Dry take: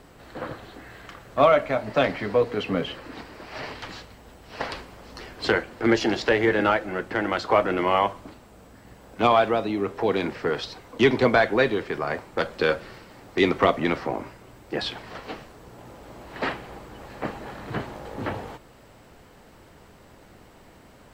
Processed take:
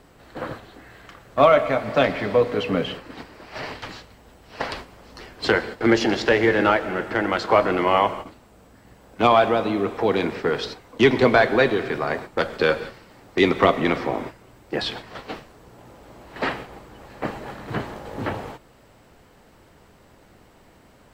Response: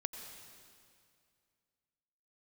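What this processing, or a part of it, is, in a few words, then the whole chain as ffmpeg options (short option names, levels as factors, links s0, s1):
keyed gated reverb: -filter_complex "[0:a]asplit=3[s0][s1][s2];[1:a]atrim=start_sample=2205[s3];[s1][s3]afir=irnorm=-1:irlink=0[s4];[s2]apad=whole_len=931903[s5];[s4][s5]sidechaingate=range=0.0224:threshold=0.0141:ratio=16:detection=peak,volume=0.841[s6];[s0][s6]amix=inputs=2:normalize=0,volume=0.794"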